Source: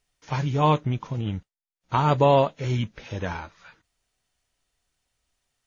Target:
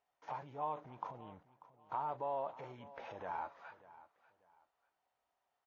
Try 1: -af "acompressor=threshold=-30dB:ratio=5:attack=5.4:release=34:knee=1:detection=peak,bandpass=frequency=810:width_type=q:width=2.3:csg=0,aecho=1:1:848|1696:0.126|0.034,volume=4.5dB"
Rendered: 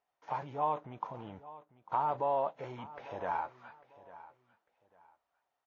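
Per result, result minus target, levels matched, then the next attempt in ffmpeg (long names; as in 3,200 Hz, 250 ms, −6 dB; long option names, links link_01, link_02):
echo 257 ms late; downward compressor: peak gain reduction −7.5 dB
-af "acompressor=threshold=-30dB:ratio=5:attack=5.4:release=34:knee=1:detection=peak,bandpass=frequency=810:width_type=q:width=2.3:csg=0,aecho=1:1:591|1182:0.126|0.034,volume=4.5dB"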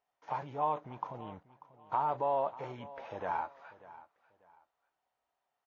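downward compressor: peak gain reduction −7.5 dB
-af "acompressor=threshold=-39.5dB:ratio=5:attack=5.4:release=34:knee=1:detection=peak,bandpass=frequency=810:width_type=q:width=2.3:csg=0,aecho=1:1:591|1182:0.126|0.034,volume=4.5dB"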